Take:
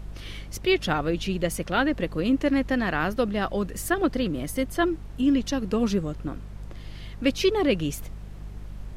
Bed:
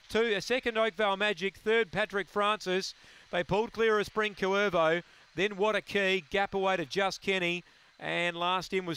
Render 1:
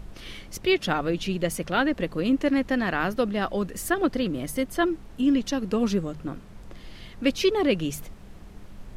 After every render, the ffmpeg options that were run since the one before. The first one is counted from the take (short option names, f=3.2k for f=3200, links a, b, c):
-af "bandreject=f=50:t=h:w=4,bandreject=f=100:t=h:w=4,bandreject=f=150:t=h:w=4"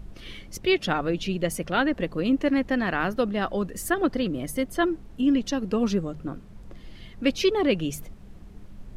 -af "afftdn=nr=6:nf=-46"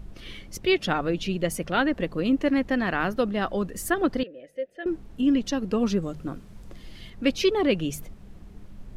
-filter_complex "[0:a]asettb=1/sr,asplit=3[a][b][c];[a]atrim=end=4.234[d];[b]atrim=start=4.23:end=4.86,asetpts=PTS-STARTPTS,afade=t=in:d=0.004:c=qsin,afade=t=out:st=0.626:d=0.004:c=qsin,asplit=3[e][f][g];[e]bandpass=f=530:t=q:w=8,volume=0dB[h];[f]bandpass=f=1.84k:t=q:w=8,volume=-6dB[i];[g]bandpass=f=2.48k:t=q:w=8,volume=-9dB[j];[h][i][j]amix=inputs=3:normalize=0[k];[c]atrim=start=4.856[l];[d][k]acrossfade=d=0.004:c1=hsin:c2=qsin[m];[m][l]acrossfade=d=0.004:c1=qsin:c2=hsin,asettb=1/sr,asplit=3[n][o][p];[n]atrim=end=6.024[q];[o]atrim=start=6.02:end=7.1,asetpts=PTS-STARTPTS,afade=t=in:d=0.004:c=qsin,afade=t=out:st=1.076:d=0.004:c=qsin,highshelf=f=3.4k:g=7[r];[p]atrim=start=7.096[s];[q][r]acrossfade=d=0.004:c1=hsin:c2=qsin[t];[t][s]acrossfade=d=0.004:c1=qsin:c2=hsin"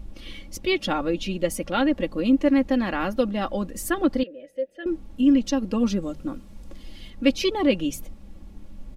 -af "equalizer=f=1.6k:w=2:g=-4.5,aecho=1:1:3.6:0.59"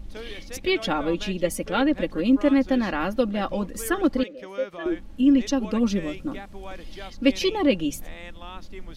-filter_complex "[1:a]volume=-11.5dB[a];[0:a][a]amix=inputs=2:normalize=0"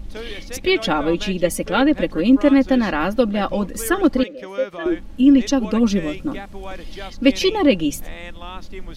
-af "volume=5.5dB,alimiter=limit=-3dB:level=0:latency=1"